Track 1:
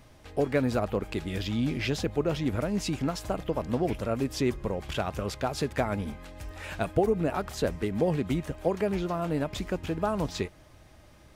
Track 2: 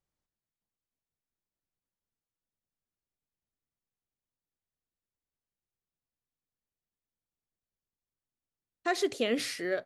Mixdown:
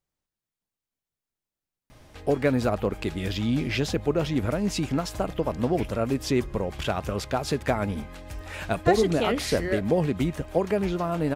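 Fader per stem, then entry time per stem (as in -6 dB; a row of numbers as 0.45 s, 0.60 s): +3.0 dB, +2.5 dB; 1.90 s, 0.00 s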